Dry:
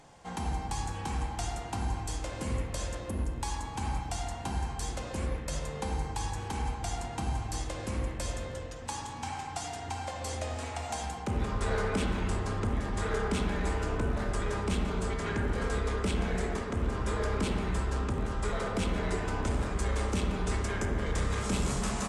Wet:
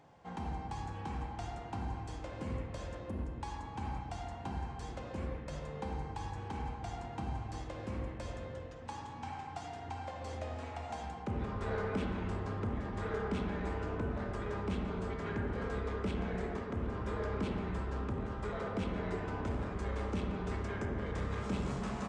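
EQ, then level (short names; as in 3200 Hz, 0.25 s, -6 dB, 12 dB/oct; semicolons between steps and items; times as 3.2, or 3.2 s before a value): HPF 68 Hz; tape spacing loss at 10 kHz 21 dB; -3.5 dB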